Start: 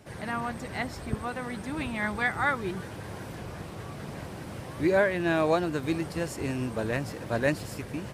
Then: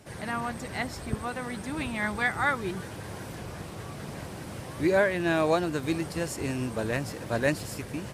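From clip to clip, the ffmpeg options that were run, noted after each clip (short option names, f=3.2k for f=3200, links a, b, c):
-af "equalizer=f=9.1k:t=o:w=2:g=4.5"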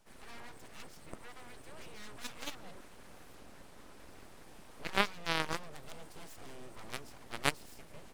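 -af "aeval=exprs='0.316*(cos(1*acos(clip(val(0)/0.316,-1,1)))-cos(1*PI/2))+0.126*(cos(3*acos(clip(val(0)/0.316,-1,1)))-cos(3*PI/2))':c=same,aeval=exprs='abs(val(0))':c=same,volume=1.5dB"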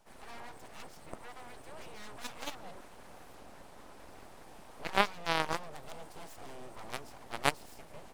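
-af "equalizer=f=780:w=1.2:g=6.5"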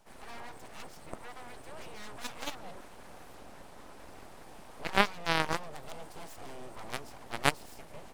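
-af "aeval=exprs='max(val(0),0)':c=same,volume=2.5dB"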